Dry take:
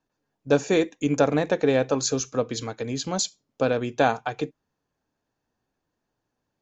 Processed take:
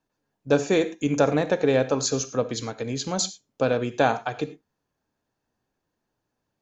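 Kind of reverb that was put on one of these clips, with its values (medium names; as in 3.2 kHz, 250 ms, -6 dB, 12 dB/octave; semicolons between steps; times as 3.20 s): gated-style reverb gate 130 ms flat, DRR 12 dB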